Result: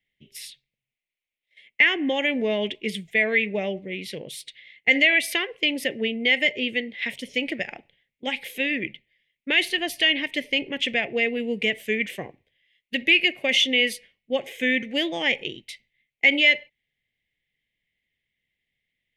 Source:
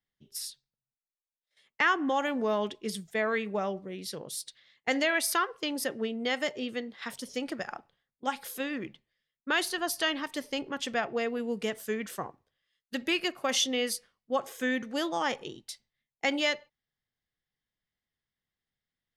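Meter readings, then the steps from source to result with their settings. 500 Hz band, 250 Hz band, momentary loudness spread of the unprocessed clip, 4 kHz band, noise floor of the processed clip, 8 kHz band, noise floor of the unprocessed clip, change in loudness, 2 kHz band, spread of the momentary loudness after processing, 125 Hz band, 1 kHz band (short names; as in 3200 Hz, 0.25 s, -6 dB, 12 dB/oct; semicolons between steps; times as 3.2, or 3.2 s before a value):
+4.0 dB, +5.0 dB, 13 LU, +10.0 dB, under -85 dBFS, -3.5 dB, under -85 dBFS, +9.0 dB, +11.0 dB, 16 LU, +5.0 dB, -5.0 dB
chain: EQ curve 590 Hz 0 dB, 1300 Hz -20 dB, 2100 Hz +14 dB, 3100 Hz +8 dB, 4800 Hz -8 dB; in parallel at +0.5 dB: limiter -18 dBFS, peak gain reduction 10.5 dB; on the sum: gain -1 dB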